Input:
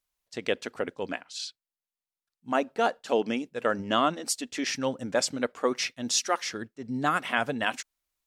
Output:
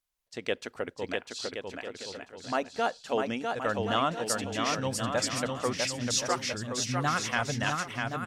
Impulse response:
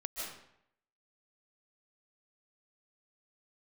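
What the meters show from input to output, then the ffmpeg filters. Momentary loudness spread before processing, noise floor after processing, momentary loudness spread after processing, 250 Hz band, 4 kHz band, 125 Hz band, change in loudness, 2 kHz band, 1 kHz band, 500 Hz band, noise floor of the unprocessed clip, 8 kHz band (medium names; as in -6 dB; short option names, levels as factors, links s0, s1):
10 LU, -63 dBFS, 11 LU, -2.5 dB, -0.5 dB, +7.0 dB, -1.5 dB, -1.0 dB, -1.0 dB, -2.0 dB, under -85 dBFS, -0.5 dB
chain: -af "asubboost=boost=7.5:cutoff=110,aecho=1:1:650|1072|1347|1526|1642:0.631|0.398|0.251|0.158|0.1,volume=0.75"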